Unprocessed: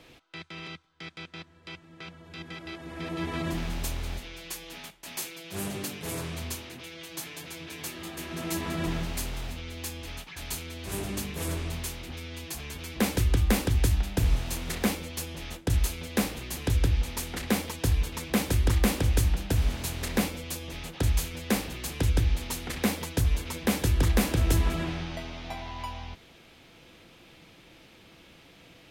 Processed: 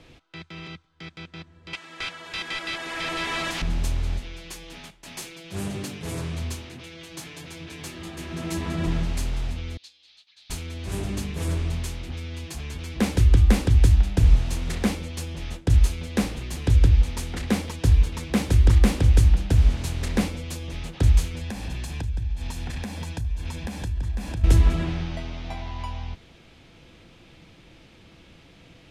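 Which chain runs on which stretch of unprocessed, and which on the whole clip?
0:01.73–0:03.62: spectral tilt +4.5 dB per octave + mid-hump overdrive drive 21 dB, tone 2,400 Hz, clips at −19 dBFS
0:09.77–0:10.50: resonant band-pass 4,100 Hz, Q 4 + expander for the loud parts, over −58 dBFS
0:21.41–0:24.44: comb filter 1.2 ms, depth 41% + downward compressor 8 to 1, threshold −32 dBFS
whole clip: low-pass filter 9,200 Hz 12 dB per octave; low-shelf EQ 180 Hz +9.5 dB

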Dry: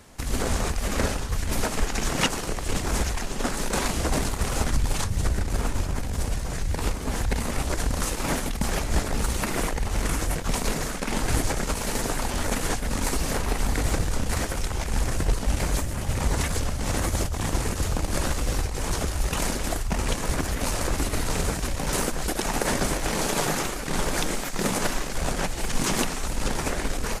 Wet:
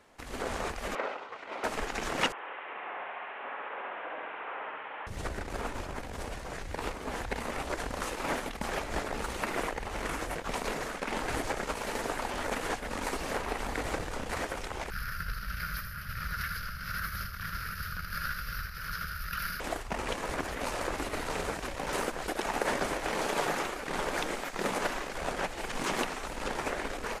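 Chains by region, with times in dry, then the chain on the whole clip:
0:00.95–0:01.64: band-pass filter 480–2,500 Hz + notch filter 1,700 Hz, Q 10
0:02.32–0:05.07: linear delta modulator 16 kbit/s, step −40 dBFS + high-pass filter 830 Hz + flutter between parallel walls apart 11.7 metres, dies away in 1.3 s
0:14.90–0:19.60: drawn EQ curve 180 Hz 0 dB, 290 Hz −25 dB, 600 Hz −21 dB, 870 Hz −29 dB, 1,400 Hz +9 dB, 2,000 Hz −4 dB, 3,500 Hz −6 dB, 5,000 Hz +5 dB, 7,800 Hz −22 dB, 12,000 Hz +12 dB + single-tap delay 80 ms −8 dB
whole clip: bass and treble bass −13 dB, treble −11 dB; automatic gain control gain up to 3.5 dB; level −6 dB

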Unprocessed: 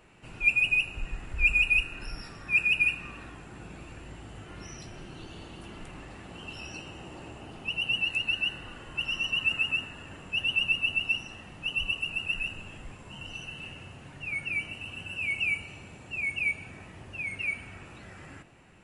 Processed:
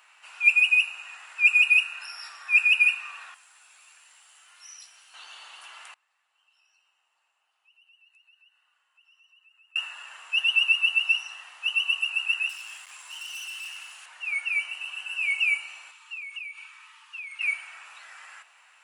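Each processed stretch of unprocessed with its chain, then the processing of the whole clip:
0:03.34–0:05.14: first-order pre-emphasis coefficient 0.8 + upward compression, threshold −56 dBFS
0:05.93–0:09.76: downward compressor 2.5 to 1, threshold −38 dBFS + gate with flip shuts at −37 dBFS, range −28 dB
0:12.49–0:14.06: high-shelf EQ 4,100 Hz +11.5 dB + hard clipping −39.5 dBFS + high-pass filter 670 Hz 6 dB per octave
0:15.91–0:17.41: downward compressor 16 to 1, threshold −36 dBFS + Chebyshev high-pass with heavy ripple 860 Hz, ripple 6 dB
whole clip: high-pass filter 990 Hz 24 dB per octave; parametric band 2,000 Hz −2 dB; level +6 dB

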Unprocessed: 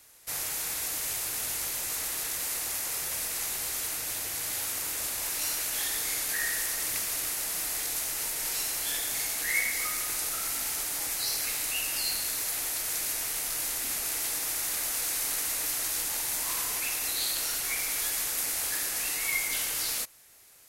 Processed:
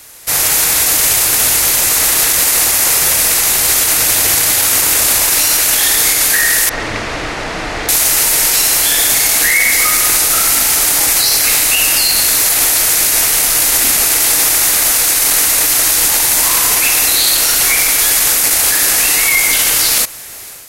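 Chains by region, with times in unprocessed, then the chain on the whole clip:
0:06.69–0:07.89: hard clipping −26 dBFS + head-to-tape spacing loss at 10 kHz 37 dB
whole clip: automatic gain control gain up to 8 dB; boost into a limiter +19.5 dB; level −1 dB

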